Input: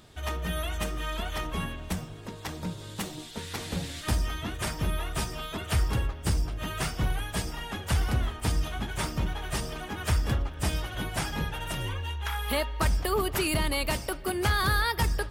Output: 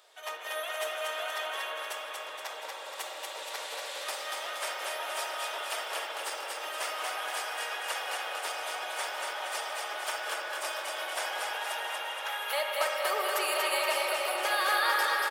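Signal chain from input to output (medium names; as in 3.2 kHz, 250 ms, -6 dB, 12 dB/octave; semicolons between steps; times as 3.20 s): steep high-pass 490 Hz 36 dB/octave; feedback delay 236 ms, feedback 54%, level -3 dB; reverberation RT60 5.7 s, pre-delay 48 ms, DRR -1 dB; trim -3 dB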